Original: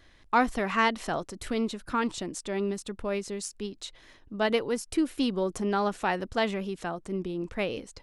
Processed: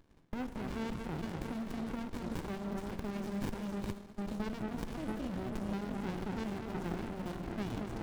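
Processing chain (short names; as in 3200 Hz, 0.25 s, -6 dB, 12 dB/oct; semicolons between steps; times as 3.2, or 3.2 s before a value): in parallel at -8 dB: bit-crush 5-bit; on the sum: reverb removal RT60 1.4 s; echo with dull and thin repeats by turns 0.225 s, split 1500 Hz, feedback 76%, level -9.5 dB; limiter -19 dBFS, peak gain reduction 11 dB; level quantiser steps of 22 dB; HPF 140 Hz 24 dB/oct; on a send at -6.5 dB: reverb RT60 1.8 s, pre-delay 18 ms; on the sum: running maximum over 65 samples; gain +7 dB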